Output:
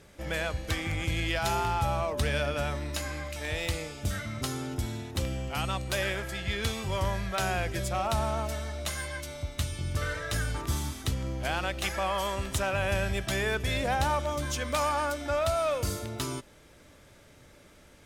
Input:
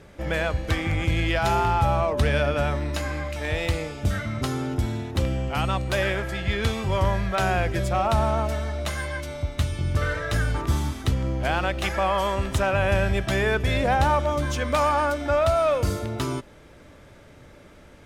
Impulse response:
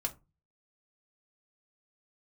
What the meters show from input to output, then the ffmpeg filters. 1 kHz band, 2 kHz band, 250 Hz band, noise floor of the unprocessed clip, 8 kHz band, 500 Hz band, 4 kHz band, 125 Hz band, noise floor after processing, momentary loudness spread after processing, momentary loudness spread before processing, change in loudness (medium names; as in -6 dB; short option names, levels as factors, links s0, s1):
-6.5 dB, -5.0 dB, -7.5 dB, -49 dBFS, +1.5 dB, -7.0 dB, -2.0 dB, -7.5 dB, -56 dBFS, 6 LU, 7 LU, -6.5 dB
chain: -af "highshelf=f=3500:g=11,volume=0.422"